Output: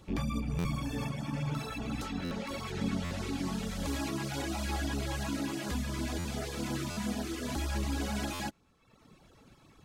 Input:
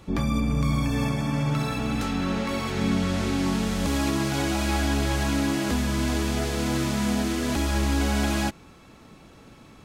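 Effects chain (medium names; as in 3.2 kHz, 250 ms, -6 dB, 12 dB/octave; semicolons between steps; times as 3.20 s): rattle on loud lows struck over -35 dBFS, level -34 dBFS; reverb removal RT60 0.98 s; LFO notch sine 8.5 Hz 220–2600 Hz; buffer glitch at 0.58/2.24/3.04/6.18/6.90/8.33 s, samples 512, times 5; trim -6 dB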